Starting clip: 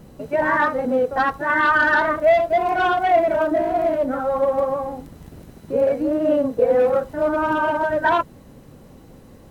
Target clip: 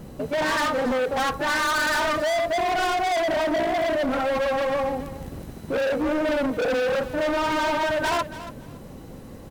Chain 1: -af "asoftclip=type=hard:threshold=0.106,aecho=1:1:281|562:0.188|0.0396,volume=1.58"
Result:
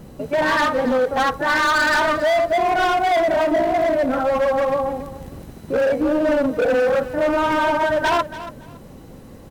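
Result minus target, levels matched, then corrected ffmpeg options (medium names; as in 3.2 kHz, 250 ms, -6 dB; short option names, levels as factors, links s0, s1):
hard clipper: distortion -4 dB
-af "asoftclip=type=hard:threshold=0.0501,aecho=1:1:281|562:0.188|0.0396,volume=1.58"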